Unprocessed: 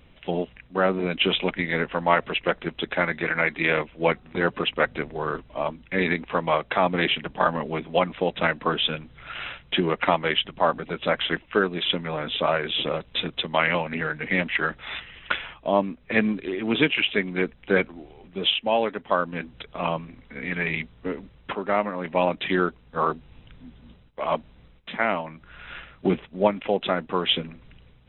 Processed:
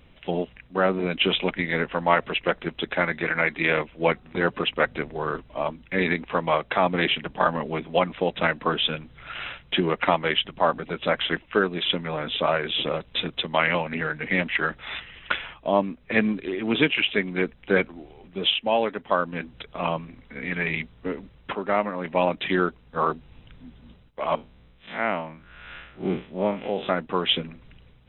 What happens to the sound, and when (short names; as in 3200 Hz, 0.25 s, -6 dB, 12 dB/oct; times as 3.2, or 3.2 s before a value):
24.35–26.89 time blur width 0.1 s